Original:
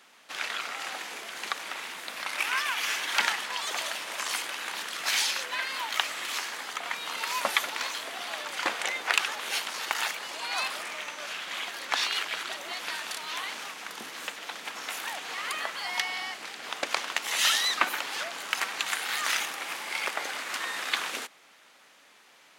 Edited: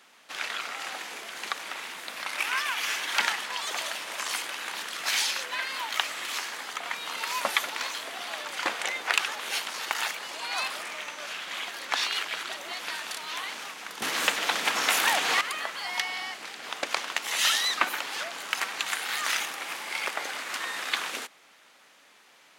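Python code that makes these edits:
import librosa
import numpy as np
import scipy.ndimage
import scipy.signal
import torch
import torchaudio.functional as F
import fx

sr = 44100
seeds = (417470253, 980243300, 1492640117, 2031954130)

y = fx.edit(x, sr, fx.clip_gain(start_s=14.02, length_s=1.39, db=11.5), tone=tone)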